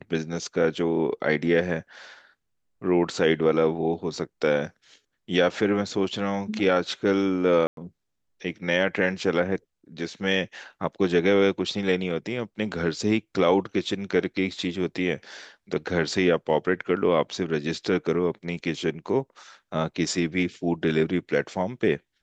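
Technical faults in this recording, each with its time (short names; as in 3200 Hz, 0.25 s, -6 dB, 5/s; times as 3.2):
7.67–7.77 gap 0.102 s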